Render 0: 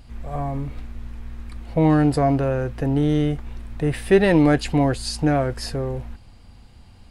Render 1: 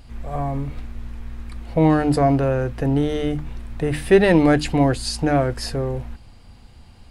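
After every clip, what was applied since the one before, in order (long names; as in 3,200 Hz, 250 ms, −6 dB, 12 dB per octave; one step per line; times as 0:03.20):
mains-hum notches 50/100/150/200/250/300 Hz
level +2 dB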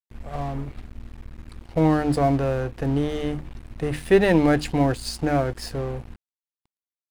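dead-zone distortion −35 dBFS
level −2.5 dB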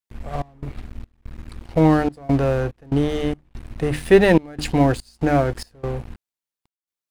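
gate pattern "xx.xx.xxxx." 72 BPM −24 dB
level +4 dB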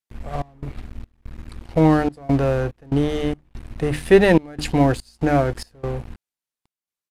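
downsampling to 32,000 Hz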